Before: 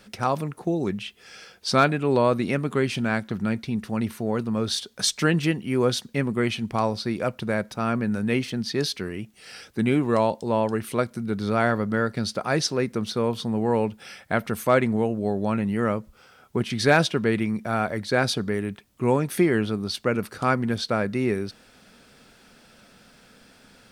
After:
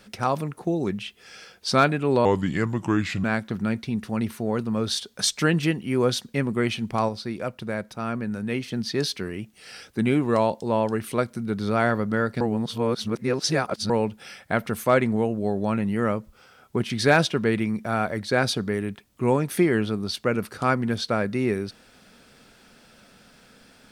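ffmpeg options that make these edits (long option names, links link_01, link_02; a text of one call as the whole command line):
ffmpeg -i in.wav -filter_complex "[0:a]asplit=7[link_01][link_02][link_03][link_04][link_05][link_06][link_07];[link_01]atrim=end=2.254[link_08];[link_02]atrim=start=2.25:end=3.04,asetpts=PTS-STARTPTS,asetrate=35280,aresample=44100[link_09];[link_03]atrim=start=3.036:end=6.892[link_10];[link_04]atrim=start=6.888:end=8.522,asetpts=PTS-STARTPTS,volume=-4dB[link_11];[link_05]atrim=start=8.518:end=12.212[link_12];[link_06]atrim=start=12.208:end=13.702,asetpts=PTS-STARTPTS,areverse[link_13];[link_07]atrim=start=13.698[link_14];[link_08][link_09]acrossfade=duration=0.004:curve1=hsin:curve2=hsin[link_15];[link_15][link_10]acrossfade=duration=0.004:curve1=hsin:curve2=hsin[link_16];[link_16][link_11]acrossfade=duration=0.004:curve1=hsin:curve2=hsin[link_17];[link_17][link_12]acrossfade=duration=0.004:curve1=hsin:curve2=hsin[link_18];[link_18][link_13]acrossfade=duration=0.004:curve1=hsin:curve2=hsin[link_19];[link_19][link_14]acrossfade=duration=0.004:curve1=hsin:curve2=hsin" out.wav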